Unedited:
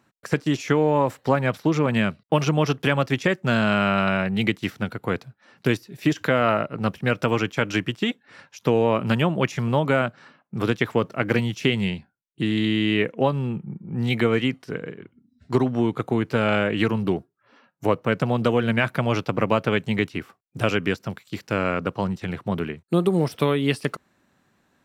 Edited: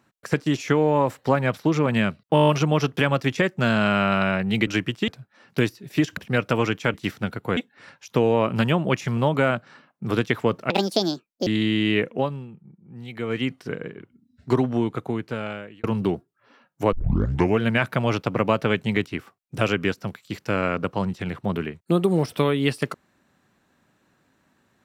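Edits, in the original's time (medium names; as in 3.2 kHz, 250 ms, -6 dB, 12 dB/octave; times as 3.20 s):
2.34 s: stutter 0.02 s, 8 plays
4.53–5.16 s: swap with 7.67–8.08 s
6.25–6.90 s: delete
11.21–12.49 s: speed 167%
13.09–14.58 s: dip -14.5 dB, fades 0.41 s
15.68–16.86 s: fade out
17.95 s: tape start 0.68 s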